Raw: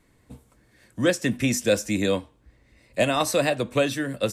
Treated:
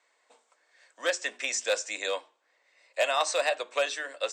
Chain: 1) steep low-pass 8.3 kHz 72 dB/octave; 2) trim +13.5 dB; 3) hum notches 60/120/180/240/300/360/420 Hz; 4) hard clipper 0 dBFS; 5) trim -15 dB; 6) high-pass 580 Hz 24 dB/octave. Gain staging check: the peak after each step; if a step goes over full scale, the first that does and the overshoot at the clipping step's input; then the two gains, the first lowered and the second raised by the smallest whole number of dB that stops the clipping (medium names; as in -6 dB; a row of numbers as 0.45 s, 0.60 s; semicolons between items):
-9.5 dBFS, +4.0 dBFS, +4.5 dBFS, 0.0 dBFS, -15.0 dBFS, -13.0 dBFS; step 2, 4.5 dB; step 2 +8.5 dB, step 5 -10 dB